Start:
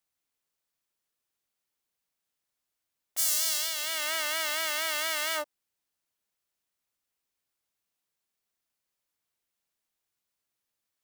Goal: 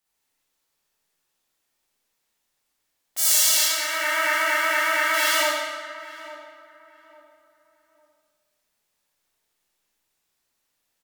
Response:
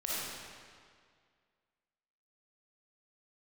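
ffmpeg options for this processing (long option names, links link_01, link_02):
-filter_complex "[0:a]asettb=1/sr,asplit=3[link_01][link_02][link_03];[link_01]atrim=end=3.634[link_04];[link_02]atrim=start=3.63:end=5.14,asetpts=PTS-STARTPTS,afade=type=in:duration=0.004:curve=qsin,afade=type=out:start_time=1.506:duration=0.004:curve=qsin,highshelf=frequency=2600:width_type=q:width=1.5:gain=-9[link_05];[link_03]atrim=start=5.136[link_06];[link_04][link_05]acrossfade=duration=0.004:curve1=hsin:curve2=qsin[link_07];[link_07][link_06]acrossfade=duration=0.004:curve1=qsin:curve2=hsin,asplit=2[link_08][link_09];[link_09]adelay=853,lowpass=frequency=1200:poles=1,volume=-13.5dB,asplit=2[link_10][link_11];[link_11]adelay=853,lowpass=frequency=1200:poles=1,volume=0.34,asplit=2[link_12][link_13];[link_13]adelay=853,lowpass=frequency=1200:poles=1,volume=0.34[link_14];[link_08][link_10][link_12][link_14]amix=inputs=4:normalize=0[link_15];[1:a]atrim=start_sample=2205,asetrate=61740,aresample=44100[link_16];[link_15][link_16]afir=irnorm=-1:irlink=0,volume=8dB"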